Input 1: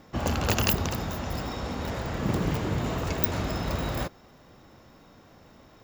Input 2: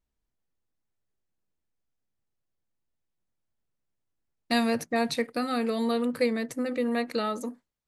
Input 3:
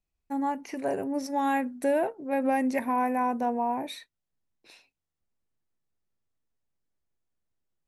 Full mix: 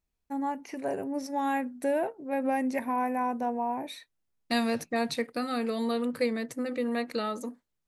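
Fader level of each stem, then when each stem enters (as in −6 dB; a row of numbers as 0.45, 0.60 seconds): muted, −2.5 dB, −2.5 dB; muted, 0.00 s, 0.00 s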